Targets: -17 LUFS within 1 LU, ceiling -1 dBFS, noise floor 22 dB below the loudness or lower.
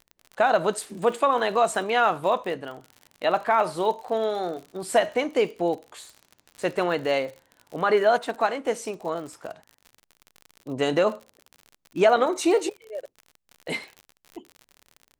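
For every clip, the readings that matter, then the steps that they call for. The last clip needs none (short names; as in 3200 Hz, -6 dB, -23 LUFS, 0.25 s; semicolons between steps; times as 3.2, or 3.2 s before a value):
ticks 54/s; loudness -24.5 LUFS; peak -7.5 dBFS; loudness target -17.0 LUFS
-> de-click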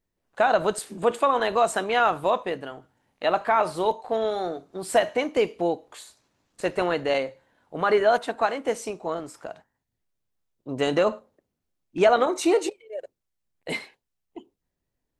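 ticks 0.066/s; loudness -24.5 LUFS; peak -7.5 dBFS; loudness target -17.0 LUFS
-> gain +7.5 dB; limiter -1 dBFS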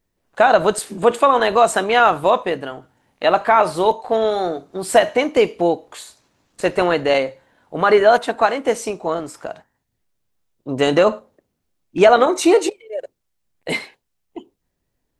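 loudness -17.0 LUFS; peak -1.0 dBFS; noise floor -74 dBFS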